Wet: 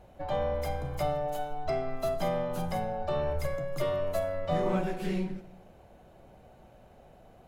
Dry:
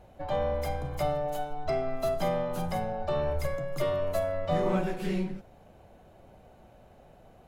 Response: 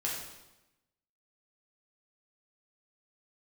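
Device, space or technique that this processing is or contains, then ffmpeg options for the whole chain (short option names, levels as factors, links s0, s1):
compressed reverb return: -filter_complex "[0:a]asplit=2[s0][s1];[1:a]atrim=start_sample=2205[s2];[s1][s2]afir=irnorm=-1:irlink=0,acompressor=threshold=0.0355:ratio=6,volume=0.224[s3];[s0][s3]amix=inputs=2:normalize=0,volume=0.794"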